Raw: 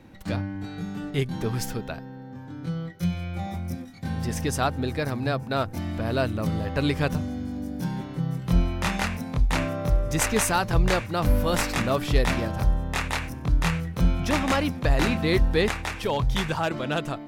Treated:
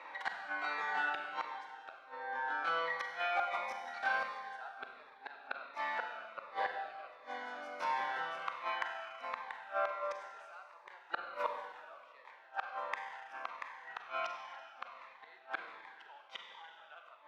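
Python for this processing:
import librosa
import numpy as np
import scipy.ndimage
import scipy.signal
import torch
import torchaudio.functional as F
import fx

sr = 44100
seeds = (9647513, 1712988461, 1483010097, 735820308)

y = fx.rider(x, sr, range_db=10, speed_s=2.0)
y = scipy.signal.sosfilt(scipy.signal.butter(4, 870.0, 'highpass', fs=sr, output='sos'), y)
y = fx.gate_flip(y, sr, shuts_db=-27.0, range_db=-32)
y = scipy.signal.sosfilt(scipy.signal.butter(2, 1500.0, 'lowpass', fs=sr, output='sos'), y)
y = fx.rev_schroeder(y, sr, rt60_s=1.8, comb_ms=32, drr_db=3.0)
y = fx.notch_cascade(y, sr, direction='falling', hz=1.4)
y = F.gain(torch.from_numpy(y), 12.5).numpy()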